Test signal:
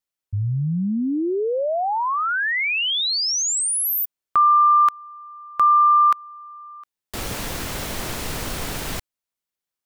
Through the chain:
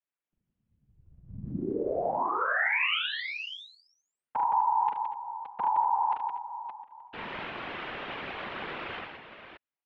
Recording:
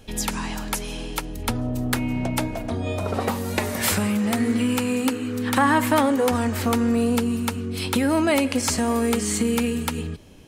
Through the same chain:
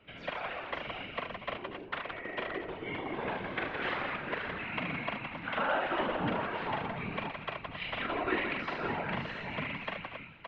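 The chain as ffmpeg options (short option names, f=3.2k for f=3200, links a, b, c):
-filter_complex "[0:a]acrossover=split=720|2300[a][b][c];[a]acompressor=threshold=-35dB:ratio=4[d];[b]acompressor=threshold=-28dB:ratio=4[e];[c]acompressor=threshold=-25dB:ratio=4[f];[d][e][f]amix=inputs=3:normalize=0,highpass=f=450:t=q:w=0.5412,highpass=f=450:t=q:w=1.307,lowpass=f=3.3k:t=q:w=0.5176,lowpass=f=3.3k:t=q:w=0.7071,lowpass=f=3.3k:t=q:w=1.932,afreqshift=-280,asplit=2[g][h];[h]aecho=0:1:42|74|167|236|249|570:0.631|0.501|0.531|0.158|0.158|0.422[i];[g][i]amix=inputs=2:normalize=0,afftfilt=real='hypot(re,im)*cos(2*PI*random(0))':imag='hypot(re,im)*sin(2*PI*random(1))':win_size=512:overlap=0.75"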